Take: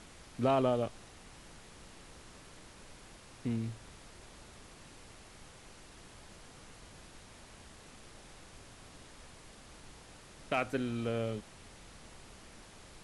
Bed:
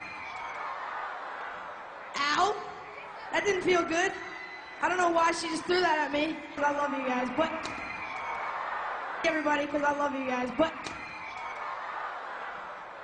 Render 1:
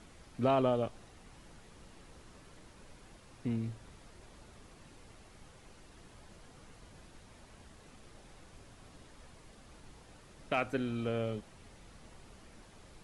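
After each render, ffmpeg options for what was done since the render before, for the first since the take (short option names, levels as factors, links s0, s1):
-af "afftdn=nr=6:nf=-55"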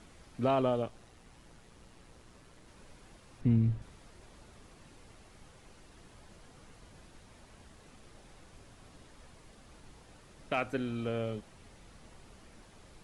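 -filter_complex "[0:a]asettb=1/sr,asplit=3[s0][s1][s2];[s0]atrim=end=0.824[s3];[s1]atrim=start=0.82:end=2.68,asetpts=PTS-STARTPTS,afade=t=in:d=0.004:c=qsin,afade=t=out:st=1.856:d=0.004:c=qsin,tremolo=f=120:d=0.4[s4];[s2]atrim=start=2.676[s5];[s3][s4]acrossfade=d=0.004:c1=hsin:c2=qsin[s6];[s6][s5]acrossfade=d=0.004:c1=qsin:c2=hsin,asettb=1/sr,asplit=3[s7][s8][s9];[s7]atrim=end=3.414[s10];[s8]atrim=start=3.41:end=3.82,asetpts=PTS-STARTPTS,afade=t=in:d=0.004:c=qsin,afade=t=out:st=0.406:d=0.004:c=qsin,bass=f=250:g=12,treble=f=4000:g=-7[s11];[s9]atrim=start=3.816[s12];[s10][s11]acrossfade=d=0.004:c1=hsin:c2=qsin[s13];[s13][s12]acrossfade=d=0.004:c1=qsin:c2=hsin"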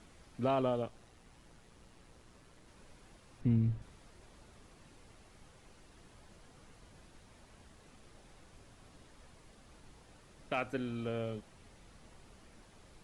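-af "volume=0.708"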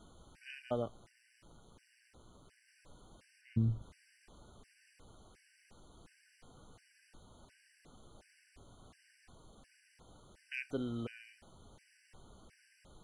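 -af "afftfilt=real='re*gt(sin(2*PI*1.4*pts/sr)*(1-2*mod(floor(b*sr/1024/1500),2)),0)':imag='im*gt(sin(2*PI*1.4*pts/sr)*(1-2*mod(floor(b*sr/1024/1500),2)),0)':win_size=1024:overlap=0.75"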